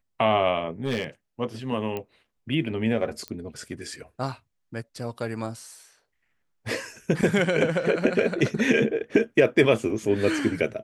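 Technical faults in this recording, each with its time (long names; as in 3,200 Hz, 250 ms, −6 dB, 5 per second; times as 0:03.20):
0:00.85–0:01.04: clipping −20.5 dBFS
0:01.97: click −18 dBFS
0:03.28: click −19 dBFS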